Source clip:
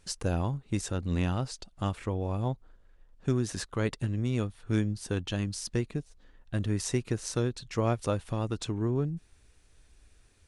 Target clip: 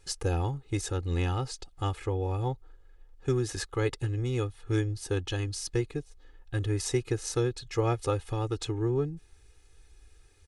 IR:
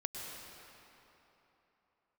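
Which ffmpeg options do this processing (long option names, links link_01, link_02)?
-af "aecho=1:1:2.4:0.94,volume=-1.5dB"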